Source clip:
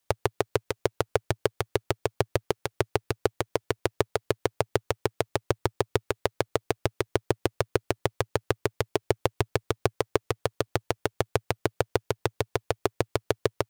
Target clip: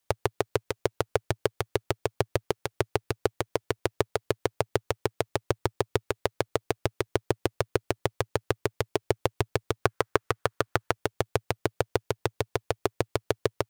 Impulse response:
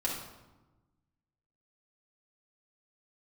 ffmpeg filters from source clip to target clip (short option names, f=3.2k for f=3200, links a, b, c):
-filter_complex "[0:a]asettb=1/sr,asplit=3[a][b][c];[a]atrim=end=9.834[d];[b]atrim=start=9.83:end=10.92,asetpts=PTS-STARTPTS,afade=t=in:d=0.004:c=qsin,afade=t=out:st=1.086:d=0.004:c=qsin,equalizer=f=1.4k:t=o:w=1.1:g=8.5[e];[c]atrim=start=10.916[f];[d][e]acrossfade=d=0.004:c1=hsin:c2=qsin[g];[g][f]acrossfade=d=0.004:c1=qsin:c2=hsin,volume=-1dB"